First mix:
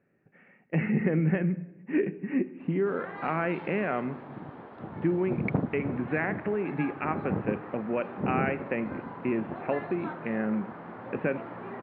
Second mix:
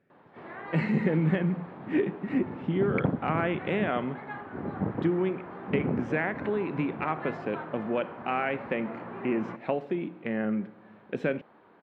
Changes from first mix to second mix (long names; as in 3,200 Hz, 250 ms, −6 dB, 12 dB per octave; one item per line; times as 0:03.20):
speech: remove Chebyshev low-pass filter 2,700 Hz, order 5
background: entry −2.50 s